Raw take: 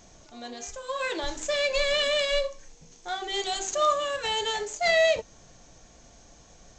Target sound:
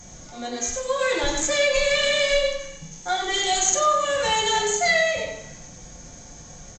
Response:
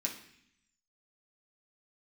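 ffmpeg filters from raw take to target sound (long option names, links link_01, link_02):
-filter_complex "[0:a]aecho=1:1:94:0.447,acompressor=threshold=-25dB:ratio=6[link_01];[1:a]atrim=start_sample=2205,asetrate=37485,aresample=44100[link_02];[link_01][link_02]afir=irnorm=-1:irlink=0,volume=5.5dB"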